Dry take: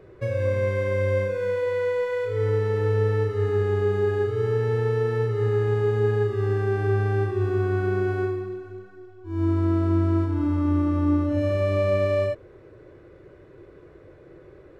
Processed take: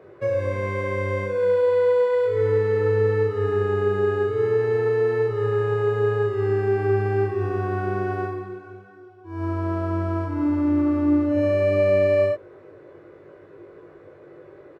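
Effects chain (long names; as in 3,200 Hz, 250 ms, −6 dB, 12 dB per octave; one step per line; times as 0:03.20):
high-pass filter 100 Hz
parametric band 840 Hz +8.5 dB 2.9 octaves
double-tracking delay 20 ms −3.5 dB
level −4.5 dB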